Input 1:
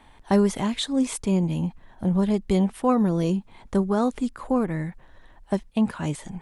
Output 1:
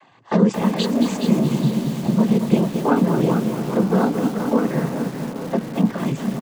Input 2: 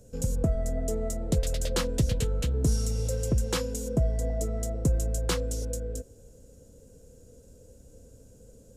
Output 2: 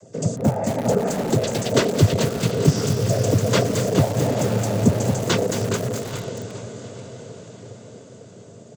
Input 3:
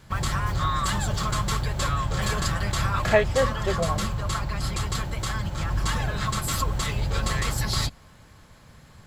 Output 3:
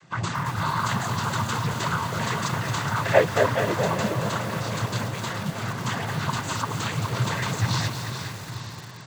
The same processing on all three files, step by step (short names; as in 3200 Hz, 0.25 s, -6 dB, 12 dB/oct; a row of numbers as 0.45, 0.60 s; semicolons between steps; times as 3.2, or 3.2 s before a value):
feedback echo 0.417 s, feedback 41%, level -9 dB; noise vocoder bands 16; high shelf 5100 Hz -7 dB; on a send: diffused feedback echo 0.888 s, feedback 44%, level -12 dB; on the sum: lo-fi delay 0.223 s, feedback 55%, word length 6-bit, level -7.5 dB; normalise peaks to -3 dBFS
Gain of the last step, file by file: +3.5, +11.0, +1.0 dB